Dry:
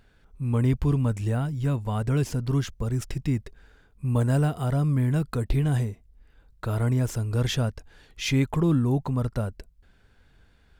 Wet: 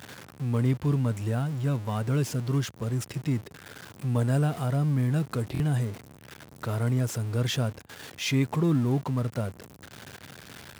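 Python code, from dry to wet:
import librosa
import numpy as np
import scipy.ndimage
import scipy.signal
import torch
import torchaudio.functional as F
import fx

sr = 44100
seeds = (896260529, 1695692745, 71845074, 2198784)

y = x + 0.5 * 10.0 ** (-34.0 / 20.0) * np.sign(x)
y = scipy.signal.sosfilt(scipy.signal.butter(4, 98.0, 'highpass', fs=sr, output='sos'), y)
y = fx.buffer_glitch(y, sr, at_s=(5.53,), block=1024, repeats=2)
y = F.gain(torch.from_numpy(y), -2.5).numpy()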